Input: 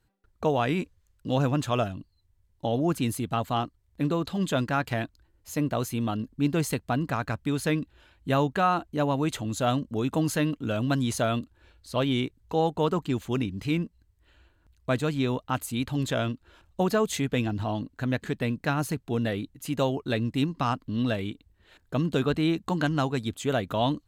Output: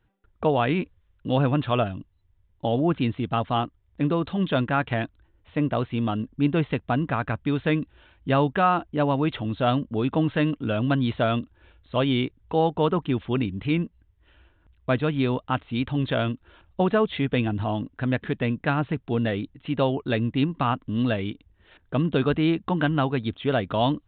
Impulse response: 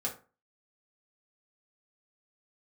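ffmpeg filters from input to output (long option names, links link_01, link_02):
-af "aresample=8000,aresample=44100,volume=3dB"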